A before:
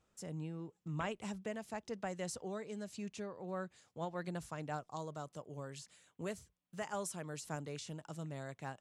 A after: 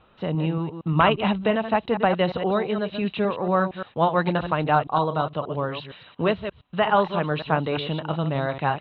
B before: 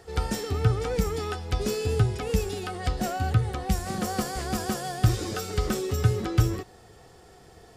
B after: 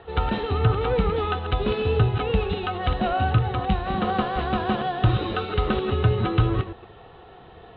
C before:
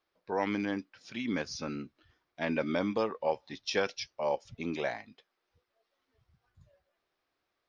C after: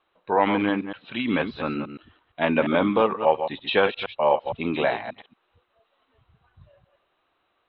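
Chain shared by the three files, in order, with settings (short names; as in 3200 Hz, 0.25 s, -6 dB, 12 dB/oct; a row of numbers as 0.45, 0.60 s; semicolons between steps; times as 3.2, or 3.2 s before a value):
reverse delay 0.116 s, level -8.5 dB; sine folder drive 3 dB, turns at -7.5 dBFS; rippled Chebyshev low-pass 4000 Hz, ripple 6 dB; match loudness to -24 LUFS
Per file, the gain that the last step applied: +17.0, +2.0, +7.0 dB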